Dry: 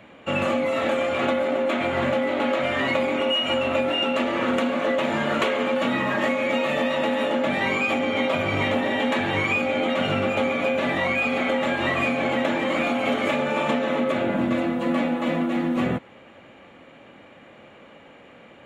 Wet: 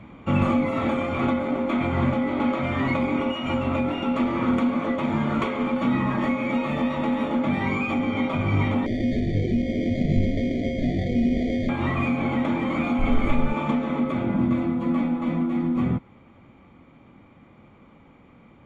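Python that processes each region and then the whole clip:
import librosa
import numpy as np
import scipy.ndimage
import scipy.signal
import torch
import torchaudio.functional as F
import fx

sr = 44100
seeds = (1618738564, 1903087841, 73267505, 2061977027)

y = fx.chain(x, sr, fx.sample_hold(seeds[0], rate_hz=2700.0, jitter_pct=0),
    fx.brickwall_bandstop(low_hz=740.0, high_hz=1700.0),
    fx.air_absorb(metres=150.0), at=(8.86, 11.69))
y = fx.peak_eq(y, sr, hz=5500.0, db=-5.0, octaves=0.39, at=(12.98, 13.51), fade=0.02)
y = fx.dmg_noise_colour(y, sr, seeds[1], colour='brown', level_db=-35.0, at=(12.98, 13.51), fade=0.02)
y = fx.tilt_eq(y, sr, slope=-3.0)
y = y + 0.52 * np.pad(y, (int(0.9 * sr / 1000.0), 0))[:len(y)]
y = fx.rider(y, sr, range_db=10, speed_s=2.0)
y = F.gain(torch.from_numpy(y), -4.5).numpy()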